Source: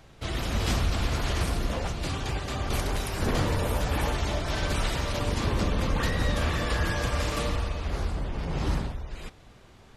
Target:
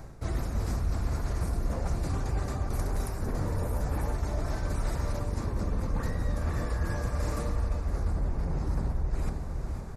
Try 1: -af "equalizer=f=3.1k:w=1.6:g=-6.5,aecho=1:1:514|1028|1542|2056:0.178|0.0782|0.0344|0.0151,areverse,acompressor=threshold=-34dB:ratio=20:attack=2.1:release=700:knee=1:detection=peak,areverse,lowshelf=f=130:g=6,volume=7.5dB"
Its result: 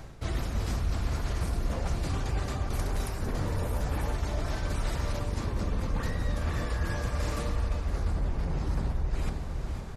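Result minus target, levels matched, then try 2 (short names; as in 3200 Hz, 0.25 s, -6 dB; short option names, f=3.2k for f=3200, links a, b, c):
4000 Hz band +6.0 dB
-af "equalizer=f=3.1k:w=1.6:g=-18.5,aecho=1:1:514|1028|1542|2056:0.178|0.0782|0.0344|0.0151,areverse,acompressor=threshold=-34dB:ratio=20:attack=2.1:release=700:knee=1:detection=peak,areverse,lowshelf=f=130:g=6,volume=7.5dB"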